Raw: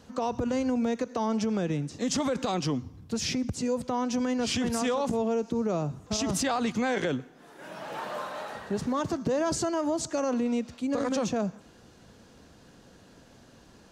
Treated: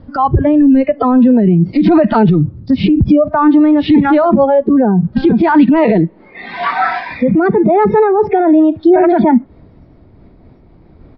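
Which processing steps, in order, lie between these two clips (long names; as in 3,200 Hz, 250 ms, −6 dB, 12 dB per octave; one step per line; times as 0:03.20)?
gliding playback speed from 113% → 136%
treble cut that deepens with the level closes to 2,500 Hz, closed at −27.5 dBFS
spectral tilt −4.5 dB per octave
noise reduction from a noise print of the clip's start 21 dB
downsampling to 11,025 Hz
boost into a limiter +26 dB
amplitude modulation by smooth noise, depth 55%
level +1 dB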